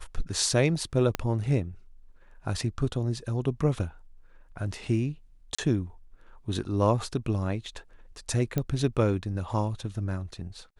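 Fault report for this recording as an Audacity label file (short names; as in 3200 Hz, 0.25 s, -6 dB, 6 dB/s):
1.150000	1.150000	pop -12 dBFS
5.550000	5.580000	gap 35 ms
8.580000	8.580000	pop -14 dBFS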